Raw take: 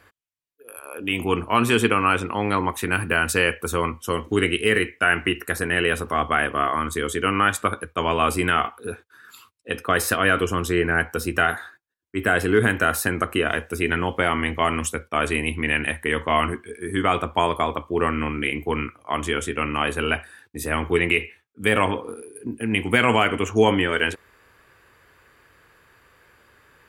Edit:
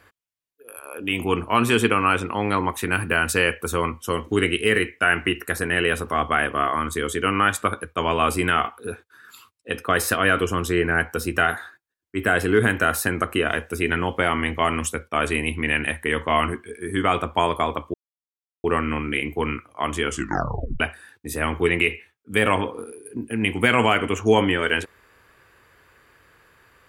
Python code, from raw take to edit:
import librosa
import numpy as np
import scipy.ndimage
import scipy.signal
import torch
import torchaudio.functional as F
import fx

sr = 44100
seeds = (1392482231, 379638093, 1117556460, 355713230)

y = fx.edit(x, sr, fx.insert_silence(at_s=17.94, length_s=0.7),
    fx.tape_stop(start_s=19.38, length_s=0.72), tone=tone)